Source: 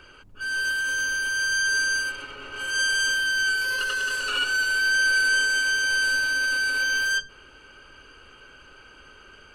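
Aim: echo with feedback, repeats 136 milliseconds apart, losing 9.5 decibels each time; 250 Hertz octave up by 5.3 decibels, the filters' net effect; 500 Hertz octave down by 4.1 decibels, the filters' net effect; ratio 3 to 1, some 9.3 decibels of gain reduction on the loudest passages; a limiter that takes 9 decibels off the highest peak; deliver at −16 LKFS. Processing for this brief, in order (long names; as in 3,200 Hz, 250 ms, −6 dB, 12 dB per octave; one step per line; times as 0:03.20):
parametric band 250 Hz +8.5 dB
parametric band 500 Hz −7.5 dB
downward compressor 3 to 1, threshold −33 dBFS
brickwall limiter −32 dBFS
repeating echo 136 ms, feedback 33%, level −9.5 dB
level +20.5 dB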